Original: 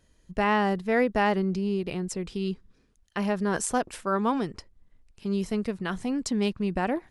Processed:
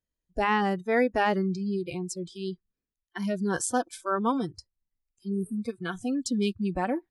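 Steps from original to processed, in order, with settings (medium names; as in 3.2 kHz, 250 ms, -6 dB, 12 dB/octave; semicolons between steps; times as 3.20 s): spectral replace 5.31–5.57 s, 420–8200 Hz after; spectral noise reduction 26 dB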